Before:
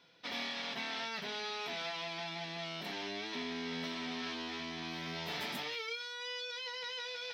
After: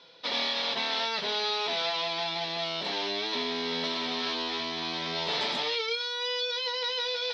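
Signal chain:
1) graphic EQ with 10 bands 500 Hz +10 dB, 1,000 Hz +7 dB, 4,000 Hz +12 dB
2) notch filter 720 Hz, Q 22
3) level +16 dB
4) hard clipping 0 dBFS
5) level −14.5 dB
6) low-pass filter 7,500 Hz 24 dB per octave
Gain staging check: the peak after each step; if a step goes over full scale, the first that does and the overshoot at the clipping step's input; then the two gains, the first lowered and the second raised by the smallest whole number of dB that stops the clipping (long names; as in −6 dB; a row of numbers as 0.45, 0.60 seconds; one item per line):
−19.5, −19.0, −3.0, −3.0, −17.5, −17.5 dBFS
no step passes full scale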